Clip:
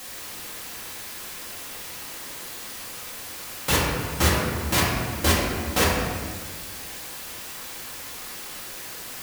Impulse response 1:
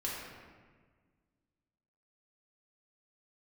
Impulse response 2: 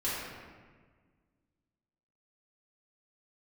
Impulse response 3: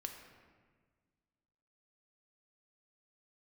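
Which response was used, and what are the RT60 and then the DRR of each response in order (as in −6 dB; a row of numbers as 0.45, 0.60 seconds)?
1; 1.5, 1.5, 1.6 seconds; −6.0, −10.5, 3.5 decibels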